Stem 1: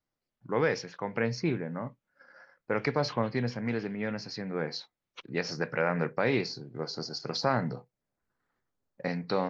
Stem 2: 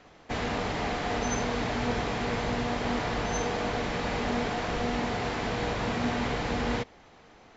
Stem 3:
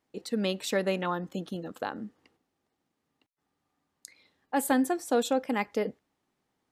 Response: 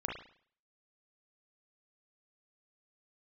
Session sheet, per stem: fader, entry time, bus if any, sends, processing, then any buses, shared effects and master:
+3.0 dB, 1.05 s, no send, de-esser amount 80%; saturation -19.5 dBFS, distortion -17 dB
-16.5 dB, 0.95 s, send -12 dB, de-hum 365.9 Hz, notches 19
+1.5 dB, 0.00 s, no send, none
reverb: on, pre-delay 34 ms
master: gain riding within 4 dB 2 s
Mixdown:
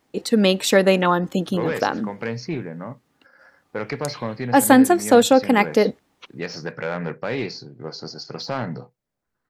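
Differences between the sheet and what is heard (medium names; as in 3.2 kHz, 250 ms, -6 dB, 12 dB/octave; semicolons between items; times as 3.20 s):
stem 2: muted; stem 3 +1.5 dB -> +12.5 dB; reverb: off; master: missing gain riding within 4 dB 2 s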